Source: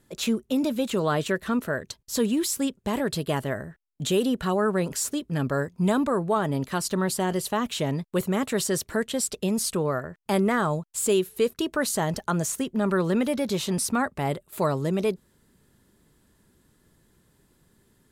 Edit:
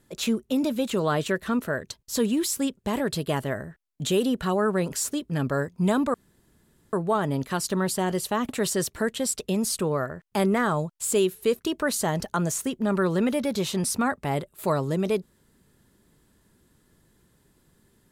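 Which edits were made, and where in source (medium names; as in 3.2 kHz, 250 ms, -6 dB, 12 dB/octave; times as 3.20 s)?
6.14 s: insert room tone 0.79 s
7.70–8.43 s: delete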